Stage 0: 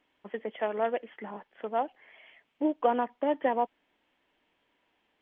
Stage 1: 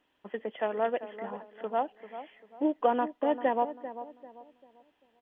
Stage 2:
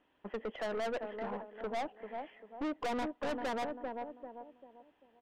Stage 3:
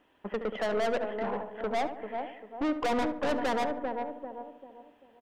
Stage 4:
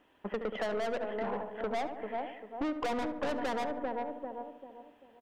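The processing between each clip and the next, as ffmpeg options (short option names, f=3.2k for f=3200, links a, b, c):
-filter_complex "[0:a]bandreject=f=2.2k:w=11,asplit=2[a][b];[b]adelay=393,lowpass=f=1.3k:p=1,volume=-11.5dB,asplit=2[c][d];[d]adelay=393,lowpass=f=1.3k:p=1,volume=0.37,asplit=2[e][f];[f]adelay=393,lowpass=f=1.3k:p=1,volume=0.37,asplit=2[g][h];[h]adelay=393,lowpass=f=1.3k:p=1,volume=0.37[i];[a][c][e][g][i]amix=inputs=5:normalize=0"
-af "lowpass=f=1.9k:p=1,aeval=exprs='(tanh(63.1*val(0)+0.3)-tanh(0.3))/63.1':c=same,volume=3dB"
-filter_complex "[0:a]asplit=2[a][b];[b]adelay=72,lowpass=f=1.6k:p=1,volume=-9dB,asplit=2[c][d];[d]adelay=72,lowpass=f=1.6k:p=1,volume=0.51,asplit=2[e][f];[f]adelay=72,lowpass=f=1.6k:p=1,volume=0.51,asplit=2[g][h];[h]adelay=72,lowpass=f=1.6k:p=1,volume=0.51,asplit=2[i][j];[j]adelay=72,lowpass=f=1.6k:p=1,volume=0.51,asplit=2[k][l];[l]adelay=72,lowpass=f=1.6k:p=1,volume=0.51[m];[a][c][e][g][i][k][m]amix=inputs=7:normalize=0,volume=6.5dB"
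-af "acompressor=threshold=-30dB:ratio=6"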